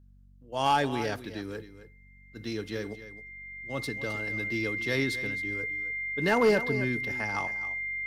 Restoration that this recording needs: clip repair -16.5 dBFS; de-hum 47.4 Hz, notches 5; band-stop 2.1 kHz, Q 30; inverse comb 264 ms -13.5 dB

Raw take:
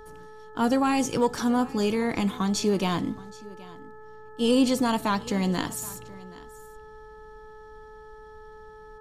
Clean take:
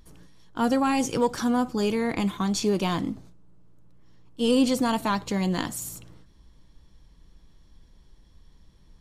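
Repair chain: de-hum 431.8 Hz, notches 4; inverse comb 775 ms -20.5 dB

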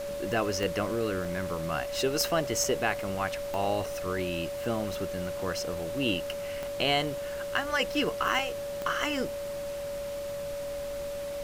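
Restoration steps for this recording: de-click; band-stop 570 Hz, Q 30; interpolate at 1.25/2.64/3.86/8.39 s, 3.4 ms; noise print and reduce 30 dB

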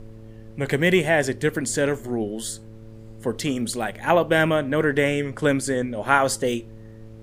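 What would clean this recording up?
de-hum 110.6 Hz, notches 5; noise print and reduce 25 dB

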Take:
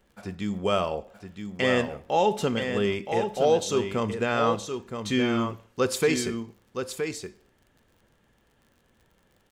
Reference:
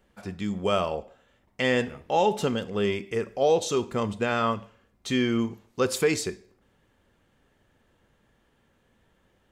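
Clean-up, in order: de-click; inverse comb 970 ms -7 dB

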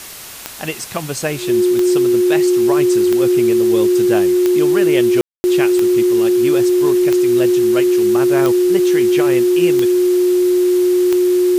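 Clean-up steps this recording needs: de-click; band-stop 360 Hz, Q 30; room tone fill 5.21–5.44 s; noise reduction 30 dB, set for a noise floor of -26 dBFS

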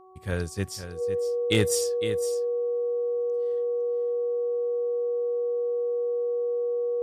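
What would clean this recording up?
clip repair -13 dBFS; de-hum 374.2 Hz, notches 3; band-stop 480 Hz, Q 30; inverse comb 508 ms -10.5 dB

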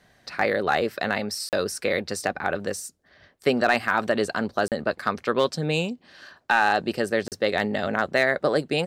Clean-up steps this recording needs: clip repair -9 dBFS; interpolate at 1.49/4.68/7.28 s, 38 ms

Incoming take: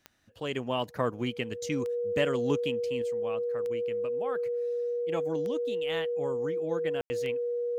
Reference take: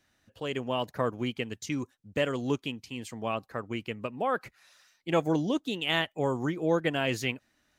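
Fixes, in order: de-click; band-stop 480 Hz, Q 30; room tone fill 7.01–7.10 s; trim 0 dB, from 3.02 s +8.5 dB

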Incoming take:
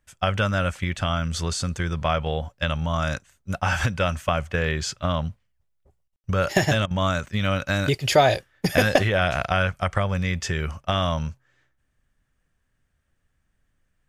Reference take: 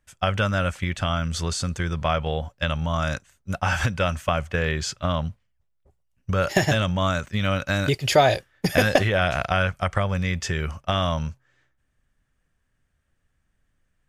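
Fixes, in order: room tone fill 6.16–6.24 s; interpolate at 6.08/6.86 s, 45 ms

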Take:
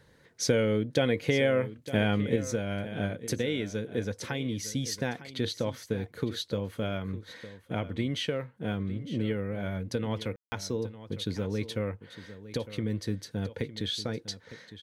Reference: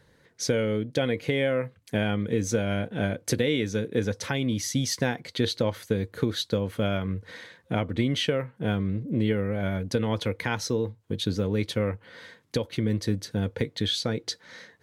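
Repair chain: room tone fill 10.36–10.52 s; inverse comb 907 ms -14.5 dB; gain correction +5.5 dB, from 2.36 s

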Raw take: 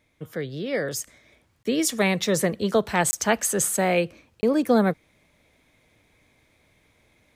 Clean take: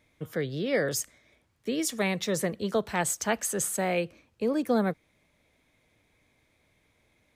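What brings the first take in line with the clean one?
interpolate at 1.63/3.11/4.41 s, 20 ms; trim 0 dB, from 1.07 s -6 dB

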